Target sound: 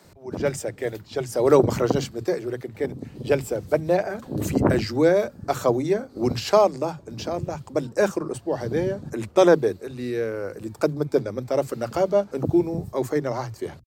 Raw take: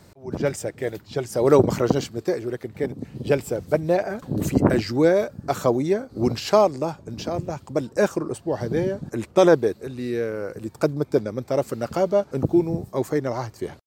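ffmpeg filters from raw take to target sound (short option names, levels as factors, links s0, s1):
-filter_complex "[0:a]acrossover=split=200[s0][s1];[s0]adelay=40[s2];[s2][s1]amix=inputs=2:normalize=0"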